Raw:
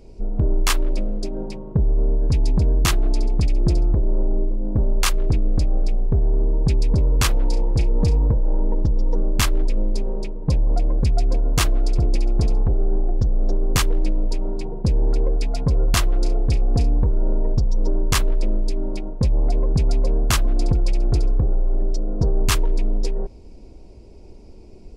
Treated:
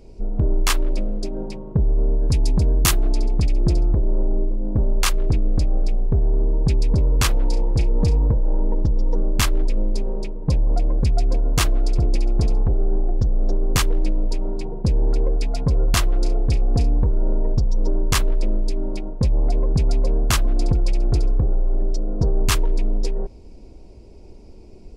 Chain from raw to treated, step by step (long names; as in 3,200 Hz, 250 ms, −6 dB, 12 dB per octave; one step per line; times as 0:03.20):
0:02.13–0:03.08: high-shelf EQ 5,600 Hz → 9,200 Hz +11.5 dB